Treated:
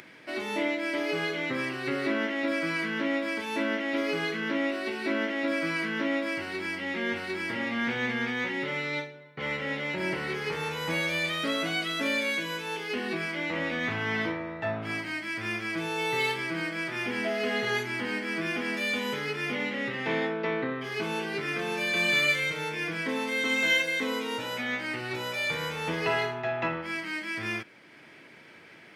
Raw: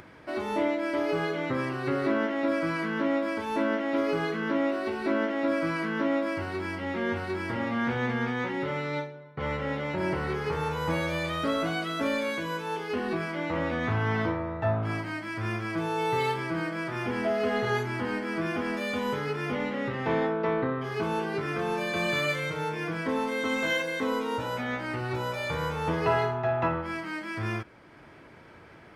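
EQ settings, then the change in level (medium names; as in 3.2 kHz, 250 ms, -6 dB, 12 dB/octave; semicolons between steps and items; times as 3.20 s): Chebyshev high-pass 190 Hz, order 2; resonant high shelf 1.6 kHz +7.5 dB, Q 1.5; -2.0 dB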